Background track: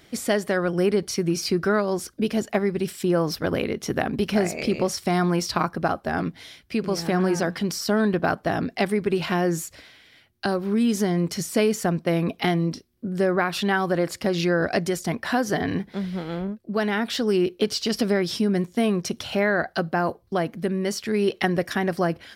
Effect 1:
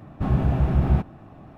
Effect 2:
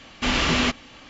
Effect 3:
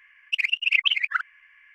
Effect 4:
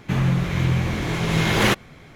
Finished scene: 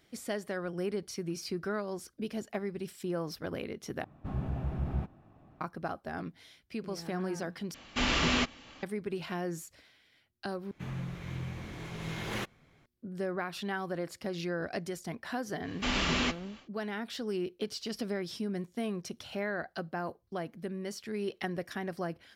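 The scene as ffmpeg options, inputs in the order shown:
-filter_complex "[2:a]asplit=2[s0][s1];[0:a]volume=0.224[s2];[s1]flanger=delay=5:depth=4.1:regen=-73:speed=2:shape=sinusoidal[s3];[s2]asplit=4[s4][s5][s6][s7];[s4]atrim=end=4.044[s8];[1:a]atrim=end=1.57,asetpts=PTS-STARTPTS,volume=0.211[s9];[s5]atrim=start=5.606:end=7.744[s10];[s0]atrim=end=1.09,asetpts=PTS-STARTPTS,volume=0.473[s11];[s6]atrim=start=8.826:end=10.714[s12];[4:a]atrim=end=2.15,asetpts=PTS-STARTPTS,volume=0.126[s13];[s7]atrim=start=12.856[s14];[s3]atrim=end=1.09,asetpts=PTS-STARTPTS,volume=0.631,afade=t=in:d=0.1,afade=t=out:st=0.99:d=0.1,adelay=15600[s15];[s8][s9]acrossfade=d=0.004:c1=hsin:c2=hsin[s16];[s16][s10]acrossfade=d=0.004:c1=hsin:c2=hsin[s17];[s17][s11]acrossfade=d=0.004:c1=hsin:c2=hsin[s18];[s18][s12]acrossfade=d=0.004:c1=hsin:c2=hsin[s19];[s19][s13]acrossfade=d=0.004:c1=hsin:c2=hsin[s20];[s20][s14]acrossfade=d=0.004:c1=hsin:c2=hsin[s21];[s21][s15]amix=inputs=2:normalize=0"

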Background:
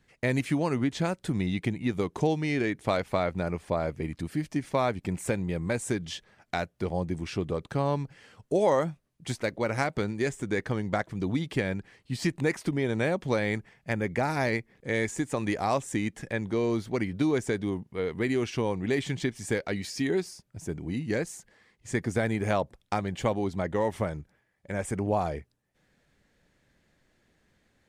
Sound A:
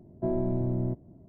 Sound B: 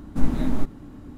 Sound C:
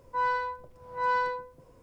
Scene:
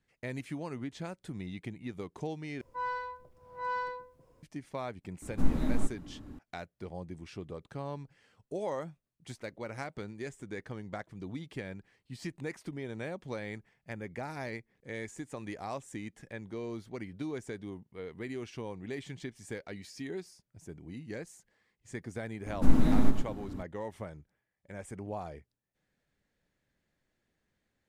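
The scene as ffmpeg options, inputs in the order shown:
-filter_complex "[2:a]asplit=2[s0][s1];[0:a]volume=0.251[s2];[s1]aecho=1:1:113:0.447[s3];[s2]asplit=2[s4][s5];[s4]atrim=end=2.614[s6];[3:a]atrim=end=1.82,asetpts=PTS-STARTPTS,volume=0.422[s7];[s5]atrim=start=4.426[s8];[s0]atrim=end=1.17,asetpts=PTS-STARTPTS,volume=0.501,afade=t=in:d=0.004:c=hsin,afade=t=out:st=1.166:d=0.004:c=hsin,adelay=5220[s9];[s3]atrim=end=1.17,asetpts=PTS-STARTPTS,volume=0.841,afade=t=in:d=0.004:c=hsin,afade=t=out:st=1.166:d=0.004:c=hsin,adelay=22460[s10];[s6][s7]acrossfade=d=0.004:c1=hsin:c2=hsin[s11];[s11][s8]acrossfade=d=0.004:c1=hsin:c2=hsin[s12];[s12][s9][s10]amix=inputs=3:normalize=0"

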